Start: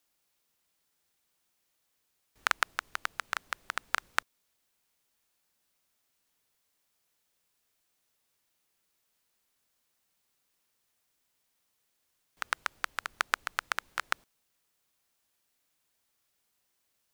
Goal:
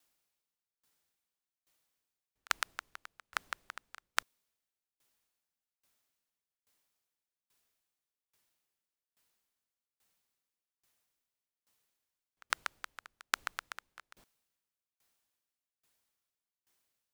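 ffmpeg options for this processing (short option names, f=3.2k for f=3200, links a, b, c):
-filter_complex "[0:a]acrossover=split=3100[a][b];[a]alimiter=limit=-14dB:level=0:latency=1:release=33[c];[c][b]amix=inputs=2:normalize=0,aeval=exprs='val(0)*pow(10,-28*if(lt(mod(1.2*n/s,1),2*abs(1.2)/1000),1-mod(1.2*n/s,1)/(2*abs(1.2)/1000),(mod(1.2*n/s,1)-2*abs(1.2)/1000)/(1-2*abs(1.2)/1000))/20)':c=same,volume=2.5dB"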